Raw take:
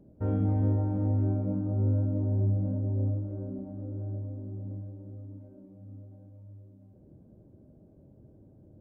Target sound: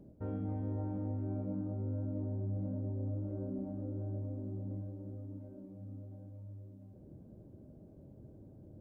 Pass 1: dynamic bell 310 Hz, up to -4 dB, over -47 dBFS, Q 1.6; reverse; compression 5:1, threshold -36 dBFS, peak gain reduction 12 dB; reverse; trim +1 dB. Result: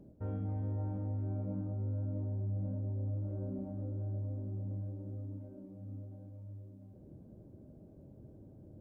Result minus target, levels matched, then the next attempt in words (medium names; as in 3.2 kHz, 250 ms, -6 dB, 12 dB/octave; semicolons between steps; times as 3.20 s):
250 Hz band -3.5 dB
dynamic bell 94 Hz, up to -4 dB, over -47 dBFS, Q 1.6; reverse; compression 5:1, threshold -36 dBFS, peak gain reduction 11 dB; reverse; trim +1 dB